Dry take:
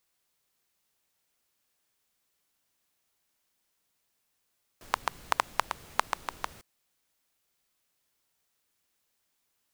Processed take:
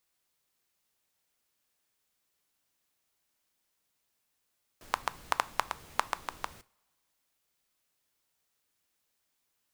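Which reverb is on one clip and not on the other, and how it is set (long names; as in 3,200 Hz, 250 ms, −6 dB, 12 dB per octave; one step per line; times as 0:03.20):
coupled-rooms reverb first 0.36 s, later 1.6 s, from −22 dB, DRR 16 dB
level −2 dB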